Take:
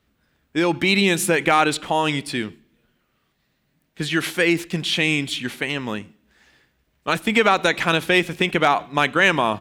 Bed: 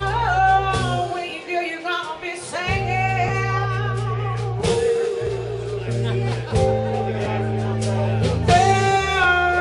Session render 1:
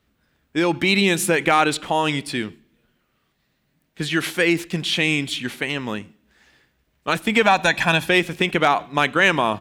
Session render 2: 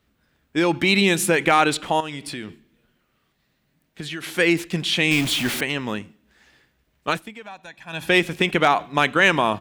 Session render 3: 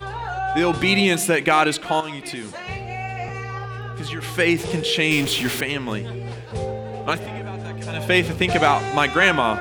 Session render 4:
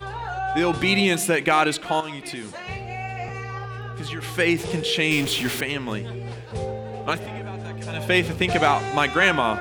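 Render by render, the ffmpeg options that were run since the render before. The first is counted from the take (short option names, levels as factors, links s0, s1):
-filter_complex "[0:a]asettb=1/sr,asplit=3[s0][s1][s2];[s0]atrim=end=7.424[s3];[s1]atrim=start=7.42:end=8.09,asetpts=PTS-STARTPTS,afade=t=in:d=0.004:c=qsin,afade=t=out:st=0.666:d=0.004:c=qsin,aecho=1:1:1.2:0.65,atrim=end_sample=29547[s4];[s2]atrim=start=8.086[s5];[s3][s4]acrossfade=d=0.004:c1=hsin:c2=qsin[s6];[s6][s5]acrossfade=d=0.004:c1=qsin:c2=hsin"
-filter_complex "[0:a]asettb=1/sr,asplit=3[s0][s1][s2];[s0]atrim=end=2.004[s3];[s1]atrim=start=2:end=4.37,asetpts=PTS-STARTPTS,afade=t=in:d=0.004:c=qsin,afade=t=out:st=2.366:d=0.004:c=qsin,acompressor=threshold=0.0398:ratio=6:attack=3.2:release=140:knee=1:detection=peak[s4];[s2]atrim=start=4.366[s5];[s3][s4]acrossfade=d=0.004:c1=hsin:c2=qsin[s6];[s6][s5]acrossfade=d=0.004:c1=qsin:c2=hsin,asettb=1/sr,asplit=3[s7][s8][s9];[s7]atrim=end=5.114[s10];[s8]atrim=start=5.11:end=5.61,asetpts=PTS-STARTPTS,afade=t=in:d=0.004:c=qsin,afade=t=out:st=0.496:d=0.004:c=qsin,aeval=exprs='val(0)+0.5*0.0708*sgn(val(0))':c=same[s11];[s9]atrim=start=5.606[s12];[s10][s11]acrossfade=d=0.004:c1=hsin:c2=qsin[s13];[s13][s12]acrossfade=d=0.004:c1=qsin:c2=hsin,asplit=3[s14][s15][s16];[s14]atrim=end=7.37,asetpts=PTS-STARTPTS,afade=t=out:st=7.09:d=0.28:c=qua:silence=0.0707946[s17];[s15]atrim=start=7.37:end=7.83,asetpts=PTS-STARTPTS,volume=0.0708[s18];[s16]atrim=start=7.83,asetpts=PTS-STARTPTS,afade=t=in:d=0.28:c=qua:silence=0.0707946[s19];[s17][s18][s19]concat=n=3:v=0:a=1"
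-filter_complex "[1:a]volume=0.355[s0];[0:a][s0]amix=inputs=2:normalize=0"
-af "volume=0.794"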